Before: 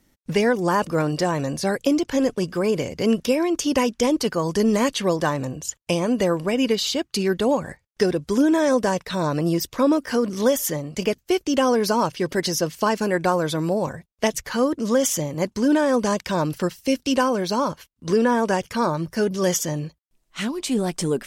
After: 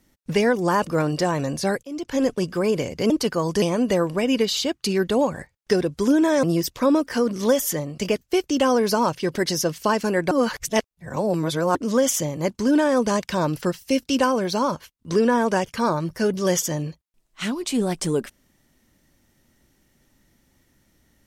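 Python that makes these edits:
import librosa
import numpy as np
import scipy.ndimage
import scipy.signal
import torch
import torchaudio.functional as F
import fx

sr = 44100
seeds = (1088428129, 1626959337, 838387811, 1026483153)

y = fx.edit(x, sr, fx.fade_in_span(start_s=1.83, length_s=0.41),
    fx.cut(start_s=3.1, length_s=1.0),
    fx.cut(start_s=4.62, length_s=1.3),
    fx.cut(start_s=8.73, length_s=0.67),
    fx.reverse_span(start_s=13.28, length_s=1.44), tone=tone)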